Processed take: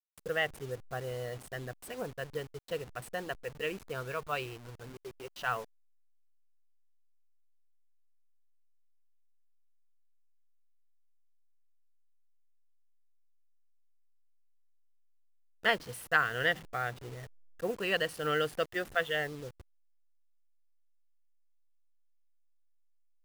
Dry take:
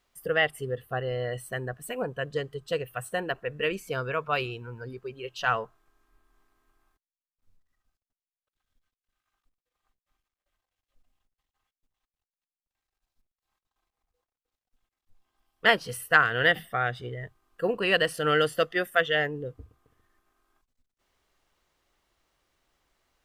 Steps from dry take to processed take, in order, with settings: level-crossing sampler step -37 dBFS; gain -7 dB

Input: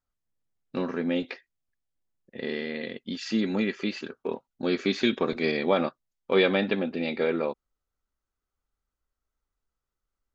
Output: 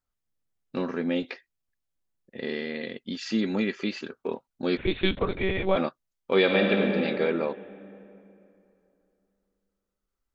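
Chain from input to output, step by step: 4.77–5.77 monotone LPC vocoder at 8 kHz 190 Hz; 6.4–6.84 reverb throw, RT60 2.9 s, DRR 0.5 dB

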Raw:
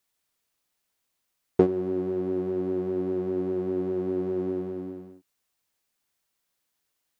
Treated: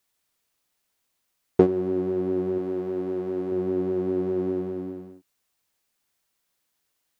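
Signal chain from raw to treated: 2.58–3.52 low shelf 320 Hz -6.5 dB; gain +2.5 dB

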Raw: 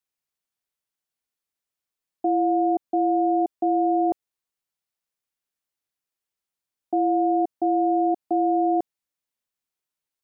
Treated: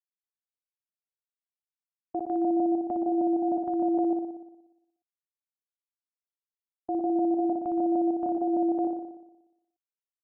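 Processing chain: local time reversal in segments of 0.153 s; gate with hold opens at -15 dBFS; downsampling 8000 Hz; on a send: flutter echo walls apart 10.2 m, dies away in 0.92 s; on the sum: gain -7.5 dB

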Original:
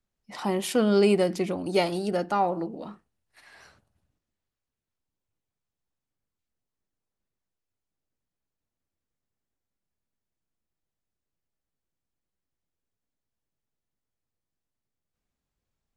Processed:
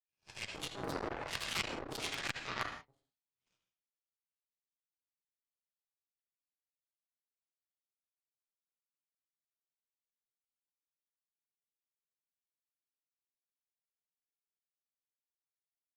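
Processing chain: spectral swells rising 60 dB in 0.48 s; HPF 170 Hz 12 dB/oct; high shelf 5100 Hz -5 dB; spectral gate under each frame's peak -25 dB weak; LFO low-pass square 0.93 Hz 380–2500 Hz; negative-ratio compressor -47 dBFS, ratio -0.5; added harmonics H 4 -15 dB, 7 -17 dB, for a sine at -28 dBFS; echoes that change speed 0.338 s, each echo +5 st, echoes 2; reverb, pre-delay 3 ms, DRR 2 dB; core saturation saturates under 2000 Hz; gain +12 dB

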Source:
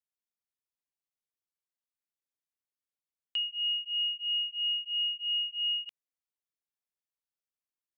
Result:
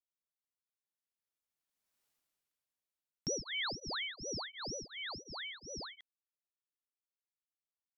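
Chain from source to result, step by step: Doppler pass-by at 2.05, 27 m/s, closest 4.3 m; ring modulator with a swept carrier 1800 Hz, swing 80%, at 2.1 Hz; gain +15.5 dB

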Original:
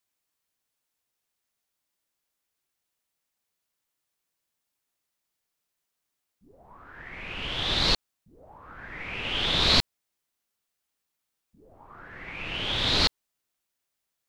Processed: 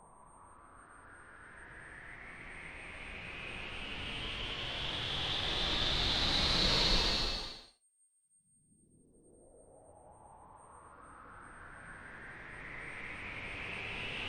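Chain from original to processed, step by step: whine 8600 Hz -41 dBFS; spectral noise reduction 20 dB; Paulstretch 5.6×, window 0.25 s, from 6.68; gain -7 dB

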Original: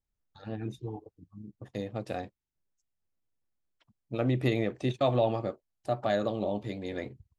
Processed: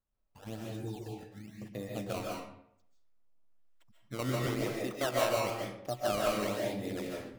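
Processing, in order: 4.46–5.37 tone controls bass -10 dB, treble 0 dB; in parallel at +1 dB: compressor, threshold -38 dBFS, peak gain reduction 15 dB; on the sum: decimation with a swept rate 15×, swing 160% 1 Hz; digital reverb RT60 0.7 s, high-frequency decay 0.7×, pre-delay 0.105 s, DRR -2.5 dB; gain -9 dB

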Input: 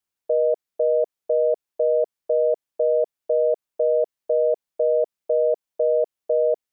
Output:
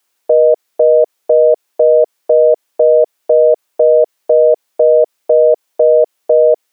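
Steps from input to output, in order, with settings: HPF 340 Hz 12 dB/oct; maximiser +20.5 dB; gain -1 dB

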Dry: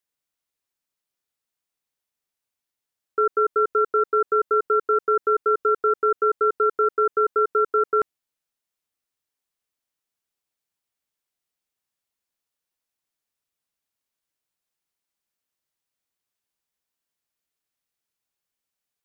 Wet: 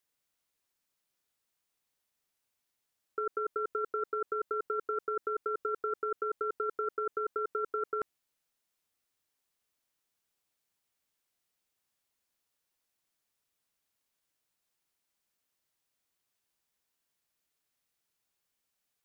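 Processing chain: negative-ratio compressor -27 dBFS, ratio -1; gain -5.5 dB

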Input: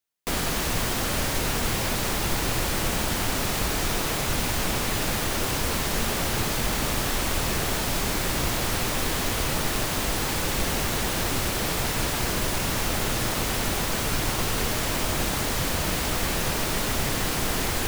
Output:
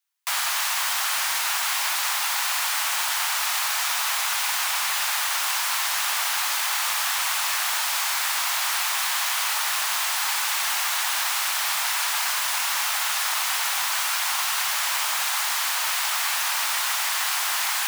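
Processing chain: steep high-pass 840 Hz 36 dB/oct; gain +4.5 dB

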